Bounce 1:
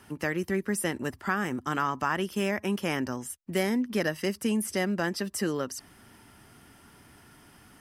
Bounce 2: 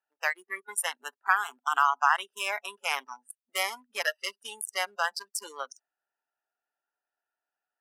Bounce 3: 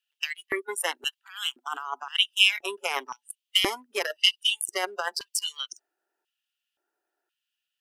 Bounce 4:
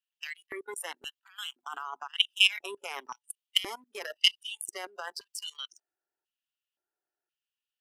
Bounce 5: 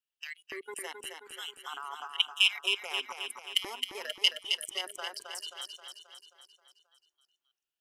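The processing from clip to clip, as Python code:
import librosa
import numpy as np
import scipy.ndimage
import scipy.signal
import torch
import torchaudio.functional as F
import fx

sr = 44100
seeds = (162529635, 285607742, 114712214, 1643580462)

y1 = fx.wiener(x, sr, points=41)
y1 = fx.noise_reduce_blind(y1, sr, reduce_db=24)
y1 = scipy.signal.sosfilt(scipy.signal.butter(4, 780.0, 'highpass', fs=sr, output='sos'), y1)
y1 = y1 * 10.0 ** (7.5 / 20.0)
y2 = fx.low_shelf(y1, sr, hz=180.0, db=7.0)
y2 = fx.over_compress(y2, sr, threshold_db=-31.0, ratio=-1.0)
y2 = fx.filter_lfo_highpass(y2, sr, shape='square', hz=0.96, low_hz=350.0, high_hz=3000.0, q=5.7)
y2 = y2 * 10.0 ** (1.0 / 20.0)
y3 = fx.level_steps(y2, sr, step_db=19)
y4 = fx.echo_feedback(y3, sr, ms=266, feedback_pct=56, wet_db=-5.5)
y4 = y4 * 10.0 ** (-2.5 / 20.0)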